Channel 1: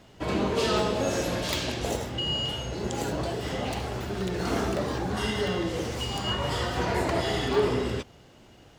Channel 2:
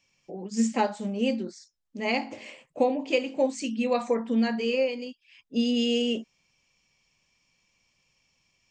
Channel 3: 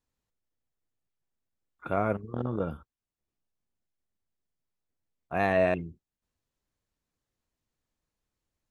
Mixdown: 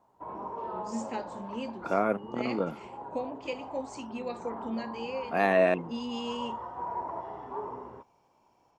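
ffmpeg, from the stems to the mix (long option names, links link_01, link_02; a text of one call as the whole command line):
ffmpeg -i stem1.wav -i stem2.wav -i stem3.wav -filter_complex "[0:a]lowpass=frequency=960:width_type=q:width=8,lowshelf=frequency=140:gain=-11.5,volume=-16.5dB[link_01];[1:a]adelay=350,volume=-11dB[link_02];[2:a]highpass=frequency=180:width=0.5412,highpass=frequency=180:width=1.3066,volume=1.5dB[link_03];[link_01][link_02][link_03]amix=inputs=3:normalize=0" out.wav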